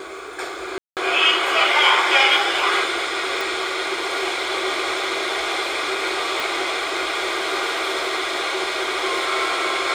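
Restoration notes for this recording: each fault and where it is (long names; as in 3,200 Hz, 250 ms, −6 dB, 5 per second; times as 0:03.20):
0:00.78–0:00.97: drop-out 188 ms
0:03.41: click
0:06.40: click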